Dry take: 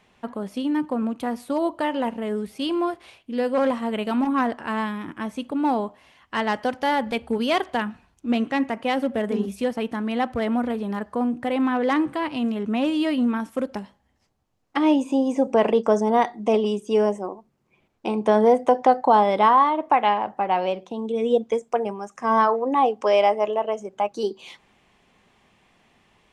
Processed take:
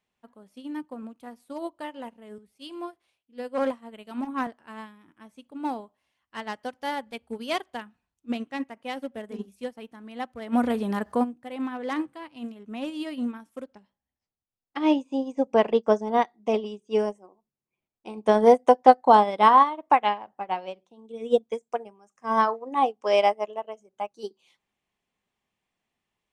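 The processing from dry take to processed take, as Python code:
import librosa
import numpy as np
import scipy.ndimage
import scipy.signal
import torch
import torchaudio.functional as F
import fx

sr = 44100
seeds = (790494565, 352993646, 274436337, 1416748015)

y = fx.band_widen(x, sr, depth_pct=40, at=(2.38, 4.47))
y = fx.env_flatten(y, sr, amount_pct=50, at=(10.52, 11.23), fade=0.02)
y = fx.lowpass(y, sr, hz=5700.0, slope=12, at=(13.64, 16.99))
y = fx.high_shelf(y, sr, hz=4800.0, db=8.0)
y = fx.upward_expand(y, sr, threshold_db=-30.0, expansion=2.5)
y = F.gain(torch.from_numpy(y), 4.0).numpy()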